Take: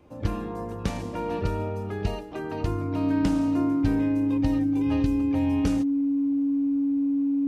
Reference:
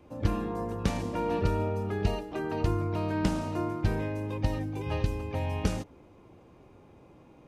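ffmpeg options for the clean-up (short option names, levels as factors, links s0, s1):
-af "bandreject=f=280:w=30"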